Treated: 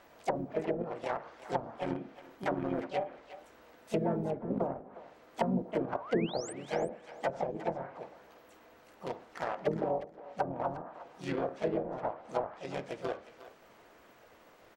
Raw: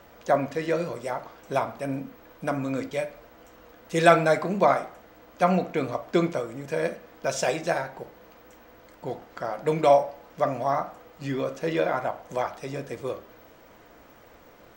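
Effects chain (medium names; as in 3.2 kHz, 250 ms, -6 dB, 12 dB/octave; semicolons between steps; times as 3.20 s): harmony voices -5 st -13 dB, +4 st -7 dB, +5 st -4 dB; bass shelf 110 Hz -9.5 dB; in parallel at -8.5 dB: bit crusher 4-bit; on the sum: low-pass that closes with the level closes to 320 Hz, closed at -16 dBFS; painted sound rise, 6.00–6.53 s, 860–9300 Hz -38 dBFS; on a send: thinning echo 359 ms, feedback 16%, high-pass 860 Hz, level -12 dB; on the sum: trim -8 dB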